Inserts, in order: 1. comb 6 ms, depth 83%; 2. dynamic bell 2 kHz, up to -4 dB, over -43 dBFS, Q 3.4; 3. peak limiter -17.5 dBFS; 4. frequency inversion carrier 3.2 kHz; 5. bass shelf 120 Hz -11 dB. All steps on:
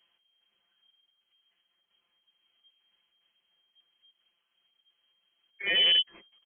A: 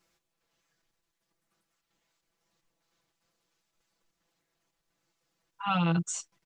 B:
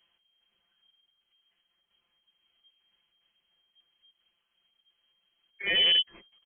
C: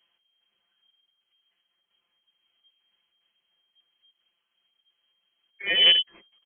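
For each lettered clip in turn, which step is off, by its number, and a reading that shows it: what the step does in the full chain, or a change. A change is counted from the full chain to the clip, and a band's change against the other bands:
4, 2 kHz band -28.0 dB; 5, 250 Hz band +1.5 dB; 3, mean gain reduction 2.0 dB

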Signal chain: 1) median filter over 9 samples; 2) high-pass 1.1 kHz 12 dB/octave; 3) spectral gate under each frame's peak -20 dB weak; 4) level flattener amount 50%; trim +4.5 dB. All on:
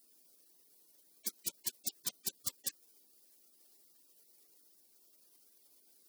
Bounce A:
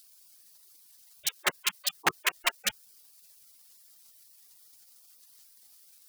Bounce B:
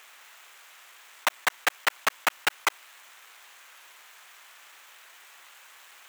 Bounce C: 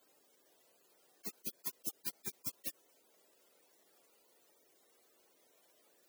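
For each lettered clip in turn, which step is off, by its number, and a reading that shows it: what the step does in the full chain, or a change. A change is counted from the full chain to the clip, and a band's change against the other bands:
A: 2, 1 kHz band +16.5 dB; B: 3, 1 kHz band +21.0 dB; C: 1, crest factor change -4.5 dB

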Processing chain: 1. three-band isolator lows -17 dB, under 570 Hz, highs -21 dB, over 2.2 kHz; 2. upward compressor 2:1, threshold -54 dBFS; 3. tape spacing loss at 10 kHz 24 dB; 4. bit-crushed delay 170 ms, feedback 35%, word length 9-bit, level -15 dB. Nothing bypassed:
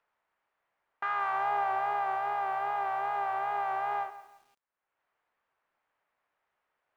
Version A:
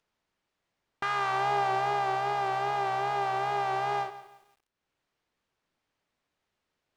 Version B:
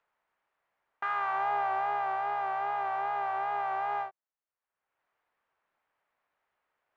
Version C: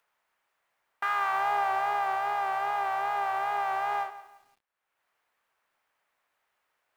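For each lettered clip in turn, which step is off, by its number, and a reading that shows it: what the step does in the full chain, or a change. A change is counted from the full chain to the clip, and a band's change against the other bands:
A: 1, crest factor change +2.0 dB; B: 4, momentary loudness spread change -1 LU; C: 3, loudness change +2.5 LU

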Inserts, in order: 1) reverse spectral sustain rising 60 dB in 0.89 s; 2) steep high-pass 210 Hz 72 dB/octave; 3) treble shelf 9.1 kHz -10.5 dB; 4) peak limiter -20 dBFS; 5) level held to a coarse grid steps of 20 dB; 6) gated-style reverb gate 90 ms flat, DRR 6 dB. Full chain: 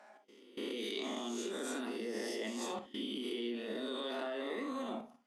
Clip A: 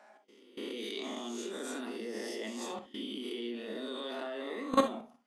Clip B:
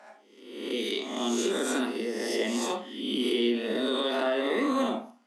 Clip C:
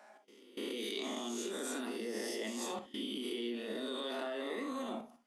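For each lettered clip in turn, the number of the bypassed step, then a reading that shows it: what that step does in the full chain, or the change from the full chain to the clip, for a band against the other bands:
4, mean gain reduction 1.5 dB; 5, momentary loudness spread change +3 LU; 3, 8 kHz band +3.5 dB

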